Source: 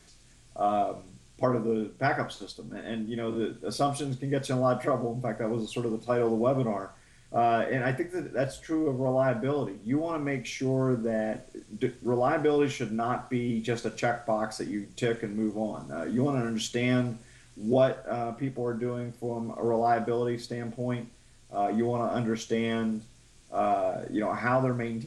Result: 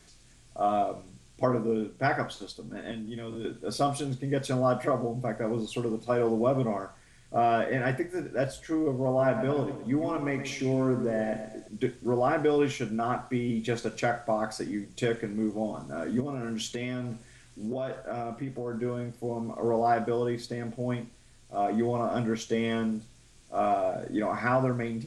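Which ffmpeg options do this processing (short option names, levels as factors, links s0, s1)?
-filter_complex "[0:a]asettb=1/sr,asplit=3[s0][s1][s2];[s0]atrim=end=2.914[s3];[s1]atrim=start=2.91:end=3.45,asetpts=PTS-STARTPTS,afade=t=in:d=0.004:c=qsin,afade=t=out:st=0.536:d=0.004:c=qsin,acrossover=split=140|3000[s4][s5][s6];[s5]acompressor=threshold=0.0158:ratio=6:attack=3.2:release=140:knee=2.83:detection=peak[s7];[s4][s7][s6]amix=inputs=3:normalize=0[s8];[s2]atrim=start=3.446[s9];[s3][s8]acrossfade=d=0.004:c1=hsin:c2=qsin[s10];[s10][s9]acrossfade=d=0.004:c1=qsin:c2=hsin,asettb=1/sr,asplit=3[s11][s12][s13];[s11]atrim=end=9.074[s14];[s12]atrim=start=9.07:end=11.68,asetpts=PTS-STARTPTS,afade=t=in:d=0.004:c=qsin,afade=t=out:st=2.606:d=0.004:c=qsin,asplit=2[s15][s16];[s16]adelay=118,lowpass=f=3900:p=1,volume=0.355,asplit=2[s17][s18];[s18]adelay=118,lowpass=f=3900:p=1,volume=0.43,asplit=2[s19][s20];[s20]adelay=118,lowpass=f=3900:p=1,volume=0.43,asplit=2[s21][s22];[s22]adelay=118,lowpass=f=3900:p=1,volume=0.43,asplit=2[s23][s24];[s24]adelay=118,lowpass=f=3900:p=1,volume=0.43[s25];[s15][s17][s19][s21][s23][s25]amix=inputs=6:normalize=0,atrim=end_sample=115101[s26];[s13]atrim=start=11.676[s27];[s14][s26]acrossfade=d=0.004:c1=hsin:c2=qsin[s28];[s28][s27]acrossfade=d=0.004:c1=qsin:c2=hsin,asettb=1/sr,asplit=3[s29][s30][s31];[s29]atrim=end=16.204[s32];[s30]atrim=start=16.2:end=18.81,asetpts=PTS-STARTPTS,afade=t=in:d=0.004:c=qsin,afade=t=out:st=2.606:d=0.004:c=qsin,acompressor=threshold=0.0355:ratio=6:attack=3.2:release=140:knee=1:detection=peak[s33];[s31]atrim=start=18.806[s34];[s32][s33]acrossfade=d=0.004:c1=hsin:c2=qsin[s35];[s35][s34]acrossfade=d=0.004:c1=qsin:c2=hsin"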